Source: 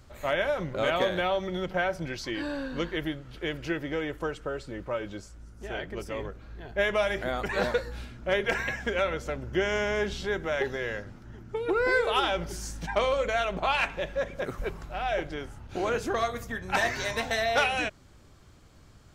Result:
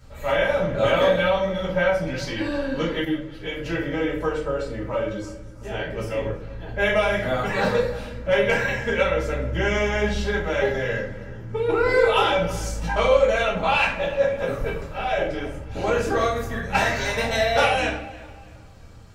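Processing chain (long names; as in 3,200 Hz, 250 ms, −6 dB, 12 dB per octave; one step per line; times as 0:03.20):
notch comb filter 360 Hz
tape delay 326 ms, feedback 38%, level −17 dB, low-pass 3,000 Hz
rectangular room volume 60 cubic metres, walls mixed, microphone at 1.4 metres
0:03.05–0:03.66: string-ensemble chorus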